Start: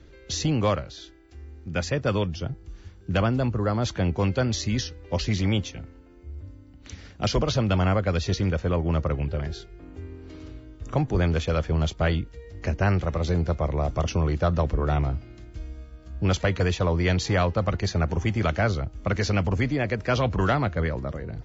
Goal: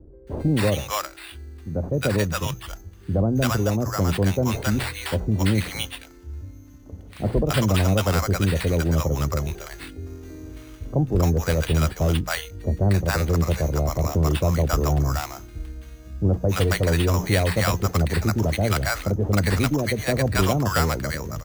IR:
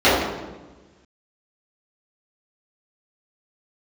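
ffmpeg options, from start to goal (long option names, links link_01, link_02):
-filter_complex "[0:a]bandreject=frequency=60:width_type=h:width=6,bandreject=frequency=120:width_type=h:width=6,bandreject=frequency=180:width_type=h:width=6,acrusher=samples=7:mix=1:aa=0.000001,acrossover=split=730[link_01][link_02];[link_02]adelay=270[link_03];[link_01][link_03]amix=inputs=2:normalize=0,volume=3.5dB"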